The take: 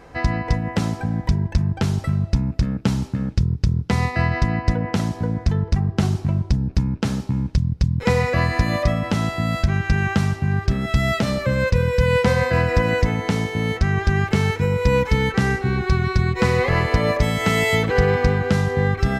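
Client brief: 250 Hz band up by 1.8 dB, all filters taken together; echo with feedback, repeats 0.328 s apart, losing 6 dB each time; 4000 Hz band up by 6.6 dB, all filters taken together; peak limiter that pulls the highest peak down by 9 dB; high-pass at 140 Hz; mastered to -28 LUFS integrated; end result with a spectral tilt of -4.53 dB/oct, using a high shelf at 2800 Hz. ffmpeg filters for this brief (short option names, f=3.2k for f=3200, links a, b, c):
-af "highpass=140,equalizer=f=250:t=o:g=4,highshelf=f=2.8k:g=6,equalizer=f=4k:t=o:g=3.5,alimiter=limit=-11dB:level=0:latency=1,aecho=1:1:328|656|984|1312|1640|1968:0.501|0.251|0.125|0.0626|0.0313|0.0157,volume=-7dB"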